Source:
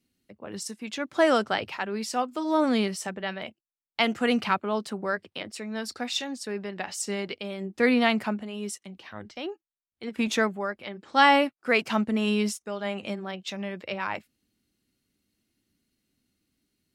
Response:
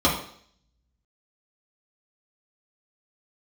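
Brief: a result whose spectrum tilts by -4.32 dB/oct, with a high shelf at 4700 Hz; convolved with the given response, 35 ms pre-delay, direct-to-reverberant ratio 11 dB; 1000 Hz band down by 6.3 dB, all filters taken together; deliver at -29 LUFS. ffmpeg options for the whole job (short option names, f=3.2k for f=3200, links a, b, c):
-filter_complex "[0:a]equalizer=f=1k:t=o:g=-8.5,highshelf=f=4.7k:g=-3.5,asplit=2[a][b];[1:a]atrim=start_sample=2205,adelay=35[c];[b][c]afir=irnorm=-1:irlink=0,volume=-28.5dB[d];[a][d]amix=inputs=2:normalize=0"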